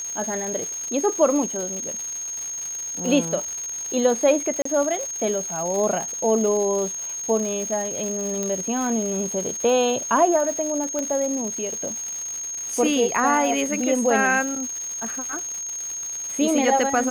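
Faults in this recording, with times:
crackle 330/s -29 dBFS
tone 6500 Hz -28 dBFS
4.62–4.65 gap 34 ms
8.43 pop -13 dBFS
10.99 pop -13 dBFS

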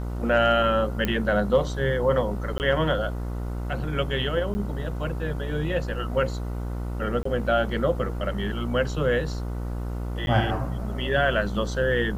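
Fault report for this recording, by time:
buzz 60 Hz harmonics 25 -30 dBFS
1.05 pop -11 dBFS
2.58–2.6 gap 19 ms
4.54–4.55 gap 10 ms
7.23–7.25 gap 24 ms
10.26–10.27 gap 11 ms

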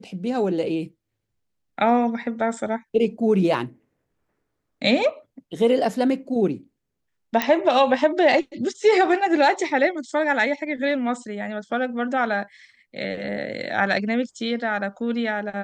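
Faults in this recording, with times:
7.42 pop -6 dBFS

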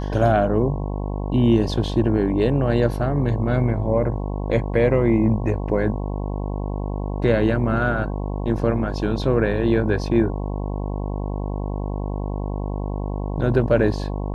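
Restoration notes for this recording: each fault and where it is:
buzz 50 Hz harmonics 22 -26 dBFS

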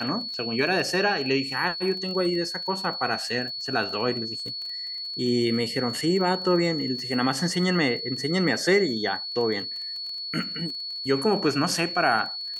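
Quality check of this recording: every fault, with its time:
crackle 25/s -33 dBFS
tone 4400 Hz -31 dBFS

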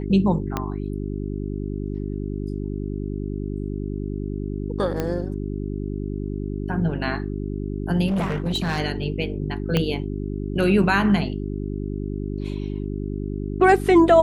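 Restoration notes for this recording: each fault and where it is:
hum 50 Hz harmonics 8 -28 dBFS
0.57 pop -10 dBFS
5 pop -12 dBFS
8.07–8.8 clipped -19.5 dBFS
9.77 pop -8 dBFS

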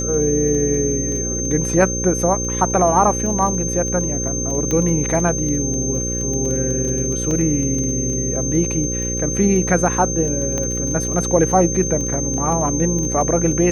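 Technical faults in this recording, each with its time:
buzz 60 Hz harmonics 9 -25 dBFS
crackle 13/s -24 dBFS
tone 6300 Hz -23 dBFS
4.71 pop -9 dBFS
7.31 gap 2.5 ms
10.58 pop -11 dBFS

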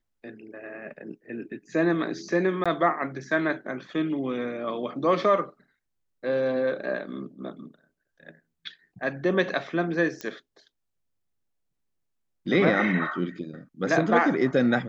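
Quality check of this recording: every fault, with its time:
2.64–2.66 gap 16 ms
10.21 pop -19 dBFS

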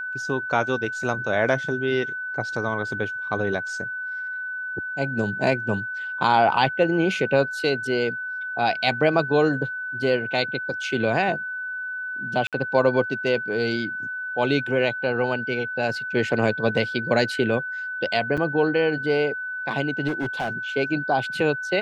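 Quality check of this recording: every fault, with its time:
tone 1500 Hz -28 dBFS
12.47–12.53 gap 57 ms
18.37–18.38 gap 6.4 ms
20.07–20.51 clipped -21.5 dBFS

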